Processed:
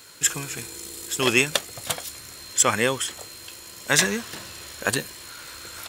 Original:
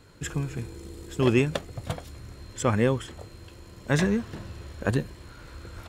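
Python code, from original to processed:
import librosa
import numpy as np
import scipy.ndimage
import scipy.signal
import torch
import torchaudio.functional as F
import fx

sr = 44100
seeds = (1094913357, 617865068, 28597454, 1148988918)

y = fx.tilt_eq(x, sr, slope=4.5)
y = y * librosa.db_to_amplitude(5.0)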